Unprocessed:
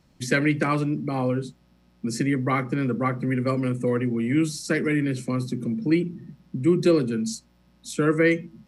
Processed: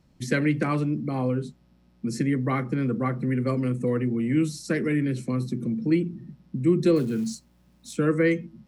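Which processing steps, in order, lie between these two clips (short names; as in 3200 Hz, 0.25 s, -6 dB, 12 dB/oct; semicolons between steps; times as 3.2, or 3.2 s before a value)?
6.96–7.97 companded quantiser 6-bit; low shelf 500 Hz +5.5 dB; gain -5 dB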